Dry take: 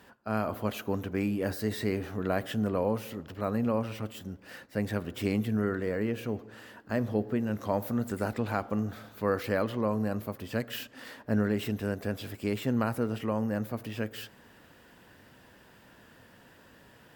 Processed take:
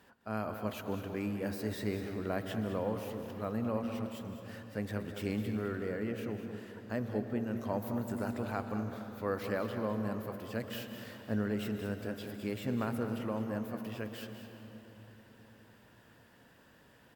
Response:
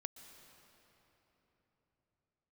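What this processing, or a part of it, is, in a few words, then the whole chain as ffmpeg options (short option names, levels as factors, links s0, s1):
cave: -filter_complex "[0:a]aecho=1:1:207:0.282[s0];[1:a]atrim=start_sample=2205[s1];[s0][s1]afir=irnorm=-1:irlink=0,volume=0.794"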